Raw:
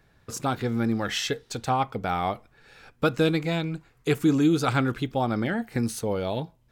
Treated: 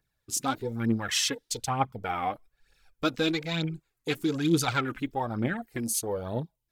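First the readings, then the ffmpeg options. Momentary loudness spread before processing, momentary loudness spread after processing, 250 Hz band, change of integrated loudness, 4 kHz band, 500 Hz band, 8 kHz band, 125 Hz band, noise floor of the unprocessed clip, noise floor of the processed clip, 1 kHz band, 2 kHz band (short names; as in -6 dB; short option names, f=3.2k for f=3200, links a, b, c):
9 LU, 8 LU, -4.5 dB, -3.0 dB, +1.5 dB, -5.5 dB, +6.0 dB, -5.0 dB, -63 dBFS, -81 dBFS, -3.0 dB, -2.0 dB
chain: -af "crystalizer=i=3.5:c=0,aphaser=in_gain=1:out_gain=1:delay=4.1:decay=0.58:speed=1.1:type=triangular,afwtdn=0.0224,volume=-6.5dB"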